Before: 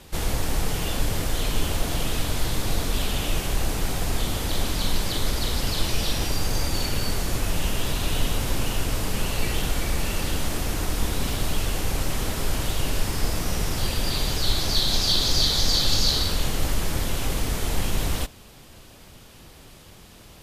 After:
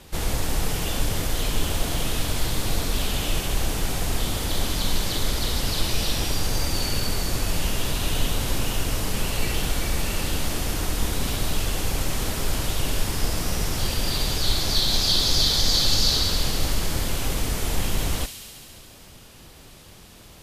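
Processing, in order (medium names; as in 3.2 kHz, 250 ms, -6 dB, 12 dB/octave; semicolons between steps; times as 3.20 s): feedback echo behind a high-pass 69 ms, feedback 82%, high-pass 2.9 kHz, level -7.5 dB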